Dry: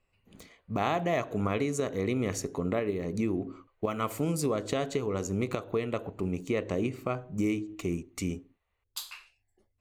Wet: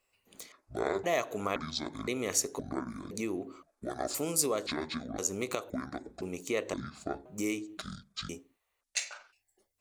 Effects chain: pitch shift switched off and on -10 st, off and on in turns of 518 ms; tone controls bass -14 dB, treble +10 dB

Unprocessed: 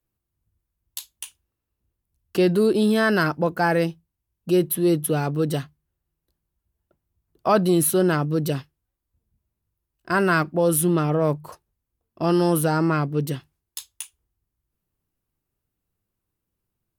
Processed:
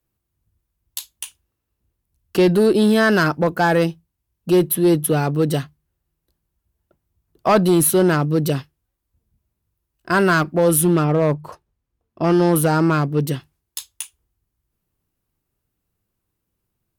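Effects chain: 11.04–12.56 s: low-pass 3.4 kHz 6 dB/octave; one-sided clip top -14 dBFS; trim +4.5 dB

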